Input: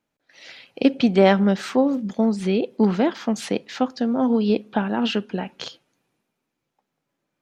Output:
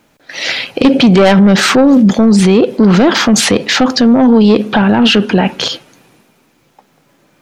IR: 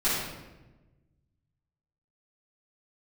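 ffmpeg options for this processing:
-af "asoftclip=type=tanh:threshold=-15dB,alimiter=level_in=27dB:limit=-1dB:release=50:level=0:latency=1,volume=-1dB"

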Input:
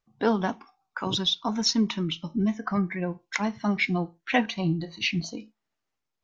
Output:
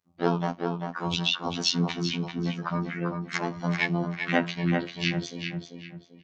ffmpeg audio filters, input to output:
ffmpeg -i in.wav -filter_complex "[0:a]highpass=frequency=60:width=0.5412,highpass=frequency=60:width=1.3066,asplit=3[link_01][link_02][link_03];[link_02]asetrate=35002,aresample=44100,atempo=1.25992,volume=-3dB[link_04];[link_03]asetrate=52444,aresample=44100,atempo=0.840896,volume=-14dB[link_05];[link_01][link_04][link_05]amix=inputs=3:normalize=0,afftfilt=real='hypot(re,im)*cos(PI*b)':imag='0':win_size=2048:overlap=0.75,asplit=2[link_06][link_07];[link_07]adelay=392,lowpass=frequency=3300:poles=1,volume=-4.5dB,asplit=2[link_08][link_09];[link_09]adelay=392,lowpass=frequency=3300:poles=1,volume=0.36,asplit=2[link_10][link_11];[link_11]adelay=392,lowpass=frequency=3300:poles=1,volume=0.36,asplit=2[link_12][link_13];[link_13]adelay=392,lowpass=frequency=3300:poles=1,volume=0.36,asplit=2[link_14][link_15];[link_15]adelay=392,lowpass=frequency=3300:poles=1,volume=0.36[link_16];[link_08][link_10][link_12][link_14][link_16]amix=inputs=5:normalize=0[link_17];[link_06][link_17]amix=inputs=2:normalize=0" out.wav

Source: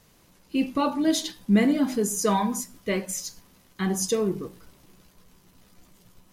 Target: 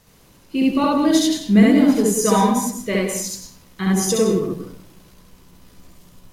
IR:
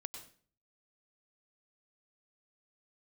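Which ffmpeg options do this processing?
-filter_complex "[0:a]asplit=2[link_01][link_02];[1:a]atrim=start_sample=2205,lowshelf=frequency=440:gain=3.5,adelay=68[link_03];[link_02][link_03]afir=irnorm=-1:irlink=0,volume=4.5dB[link_04];[link_01][link_04]amix=inputs=2:normalize=0,volume=2.5dB"

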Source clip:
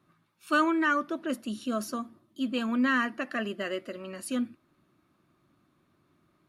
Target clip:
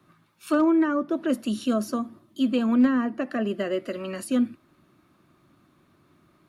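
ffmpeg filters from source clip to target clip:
ffmpeg -i in.wav -filter_complex "[0:a]acrossover=split=170|810[link_01][link_02][link_03];[link_03]acompressor=threshold=-43dB:ratio=16[link_04];[link_01][link_02][link_04]amix=inputs=3:normalize=0,asoftclip=type=hard:threshold=-20dB,volume=7.5dB" out.wav

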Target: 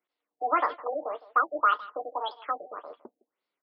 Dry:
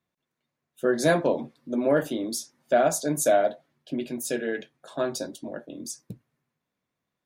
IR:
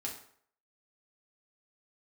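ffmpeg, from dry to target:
-filter_complex "[0:a]highpass=frequency=330:poles=1,asetrate=88200,aresample=44100,asplit=2[link_01][link_02];[link_02]adelay=160,highpass=300,lowpass=3400,asoftclip=type=hard:threshold=-17.5dB,volume=-19dB[link_03];[link_01][link_03]amix=inputs=2:normalize=0,afftfilt=real='re*lt(b*sr/1024,740*pow(5600/740,0.5+0.5*sin(2*PI*1.8*pts/sr)))':imag='im*lt(b*sr/1024,740*pow(5600/740,0.5+0.5*sin(2*PI*1.8*pts/sr)))':win_size=1024:overlap=0.75"

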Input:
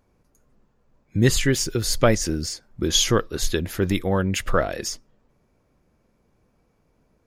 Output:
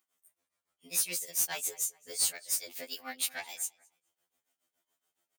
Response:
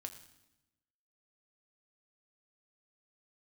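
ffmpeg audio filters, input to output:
-filter_complex "[0:a]asetrate=59535,aresample=44100,tremolo=f=7.1:d=0.91,asplit=2[link_01][link_02];[link_02]adelay=214,lowpass=frequency=3100:poles=1,volume=-22.5dB,asplit=2[link_03][link_04];[link_04]adelay=214,lowpass=frequency=3100:poles=1,volume=0.34[link_05];[link_01][link_03][link_05]amix=inputs=3:normalize=0,asplit=2[link_06][link_07];[link_07]aeval=exprs='0.631*sin(PI/2*2.51*val(0)/0.631)':channel_layout=same,volume=-4dB[link_08];[link_06][link_08]amix=inputs=2:normalize=0,aderivative,asoftclip=type=tanh:threshold=-13.5dB,highpass=48,afftfilt=real='re*2*eq(mod(b,4),0)':imag='im*2*eq(mod(b,4),0)':win_size=2048:overlap=0.75,volume=-6dB"

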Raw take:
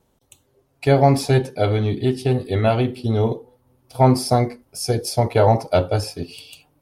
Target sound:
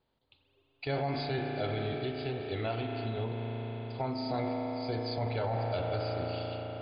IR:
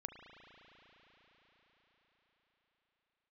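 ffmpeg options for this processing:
-filter_complex "[0:a]flanger=delay=2.5:depth=4.1:regen=90:speed=1.7:shape=triangular[link_01];[1:a]atrim=start_sample=2205[link_02];[link_01][link_02]afir=irnorm=-1:irlink=0,asettb=1/sr,asplit=3[link_03][link_04][link_05];[link_03]atrim=end=1.964[link_06];[link_04]atrim=start=1.96:end=4.3,asetpts=PTS-STARTPTS,afade=type=in:duration=0.004:curve=qsin,afade=type=out:start_time=2.336:duration=0.004:curve=qsin,acompressor=threshold=-26dB:ratio=6[link_07];[link_05]atrim=start=4.296[link_08];[link_06][link_07]acrossfade=duration=0.004:curve1=hsin:curve2=qsin[link_09];[link_09][link_08]acrossfade=duration=0.004:curve1=qsin:curve2=hsin,equalizer=frequency=190:width=2.4:gain=-3.5,alimiter=limit=-21dB:level=0:latency=1:release=21,tiltshelf=frequency=1500:gain=-4" -ar 11025 -c:a libmp3lame -b:a 64k

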